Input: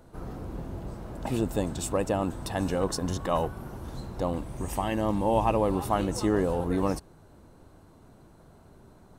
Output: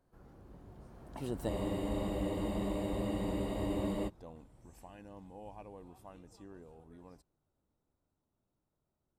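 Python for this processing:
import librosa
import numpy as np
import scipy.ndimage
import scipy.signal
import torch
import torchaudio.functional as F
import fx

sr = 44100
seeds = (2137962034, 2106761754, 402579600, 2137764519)

y = fx.doppler_pass(x, sr, speed_mps=26, closest_m=4.8, pass_at_s=1.87)
y = fx.spec_freeze(y, sr, seeds[0], at_s=1.5, hold_s=2.57)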